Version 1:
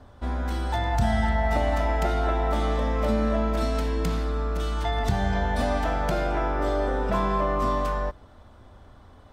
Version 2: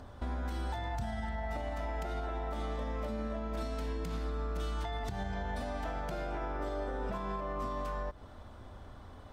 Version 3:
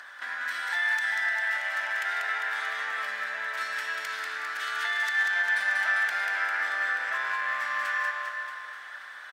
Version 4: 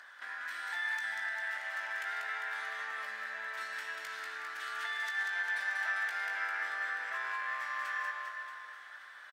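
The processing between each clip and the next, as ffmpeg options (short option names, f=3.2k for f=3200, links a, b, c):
-af "acompressor=threshold=-31dB:ratio=6,alimiter=level_in=4dB:limit=-24dB:level=0:latency=1:release=143,volume=-4dB,acompressor=mode=upward:threshold=-53dB:ratio=2.5"
-af "asoftclip=type=hard:threshold=-31.5dB,highpass=f=1.7k:t=q:w=5.9,aecho=1:1:190|399|628.9|881.8|1160:0.631|0.398|0.251|0.158|0.1,volume=9dB"
-filter_complex "[0:a]asplit=2[a][b];[b]adelay=18,volume=-8dB[c];[a][c]amix=inputs=2:normalize=0,volume=-8.5dB"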